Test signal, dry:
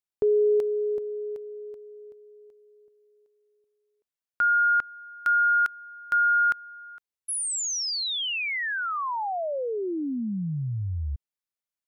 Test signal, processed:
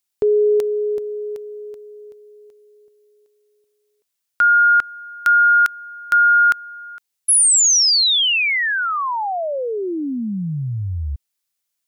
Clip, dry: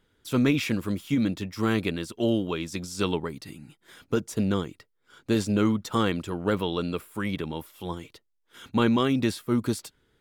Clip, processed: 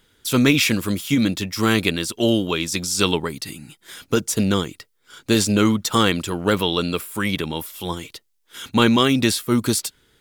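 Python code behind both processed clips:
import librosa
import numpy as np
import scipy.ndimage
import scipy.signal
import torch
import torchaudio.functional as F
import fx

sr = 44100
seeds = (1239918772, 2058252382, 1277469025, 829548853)

y = fx.high_shelf(x, sr, hz=2400.0, db=11.0)
y = F.gain(torch.from_numpy(y), 5.5).numpy()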